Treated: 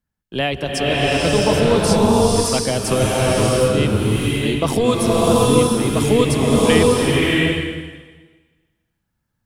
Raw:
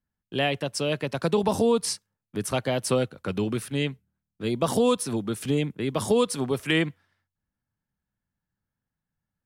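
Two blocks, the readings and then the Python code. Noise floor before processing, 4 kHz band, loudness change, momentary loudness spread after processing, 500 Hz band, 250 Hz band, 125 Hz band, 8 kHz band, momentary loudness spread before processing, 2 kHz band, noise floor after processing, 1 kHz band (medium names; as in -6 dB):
under -85 dBFS, +10.5 dB, +10.0 dB, 8 LU, +10.0 dB, +10.5 dB, +12.5 dB, +10.5 dB, 8 LU, +10.5 dB, -74 dBFS, +11.0 dB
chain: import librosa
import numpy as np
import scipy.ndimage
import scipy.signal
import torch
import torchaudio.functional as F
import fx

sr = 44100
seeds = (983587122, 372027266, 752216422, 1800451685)

y = fx.octave_divider(x, sr, octaves=1, level_db=-6.0)
y = fx.rev_bloom(y, sr, seeds[0], attack_ms=680, drr_db=-5.5)
y = F.gain(torch.from_numpy(y), 4.0).numpy()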